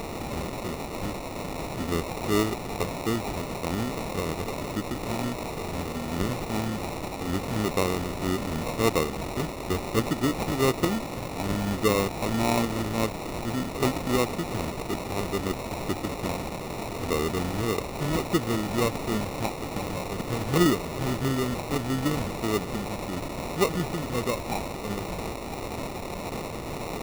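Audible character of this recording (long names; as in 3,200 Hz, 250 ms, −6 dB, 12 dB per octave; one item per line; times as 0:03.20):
a quantiser's noise floor 6 bits, dither triangular
phaser sweep stages 4, 1.7 Hz, lowest notch 470–2,100 Hz
aliases and images of a low sample rate 1,600 Hz, jitter 0%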